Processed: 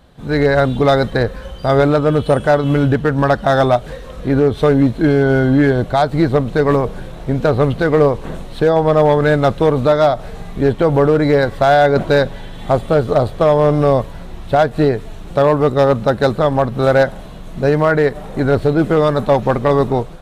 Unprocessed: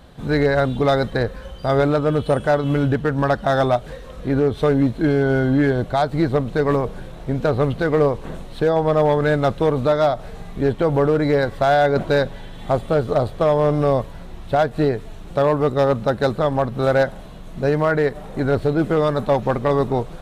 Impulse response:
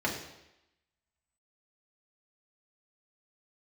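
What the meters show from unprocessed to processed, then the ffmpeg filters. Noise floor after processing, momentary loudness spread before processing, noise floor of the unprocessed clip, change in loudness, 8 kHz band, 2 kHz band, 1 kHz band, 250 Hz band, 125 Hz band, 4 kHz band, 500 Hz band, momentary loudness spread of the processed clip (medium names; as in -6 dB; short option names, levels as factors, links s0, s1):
-32 dBFS, 7 LU, -36 dBFS, +5.0 dB, no reading, +5.0 dB, +5.0 dB, +5.0 dB, +5.0 dB, +5.0 dB, +5.0 dB, 7 LU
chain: -af "dynaudnorm=f=130:g=5:m=3.55,volume=0.708"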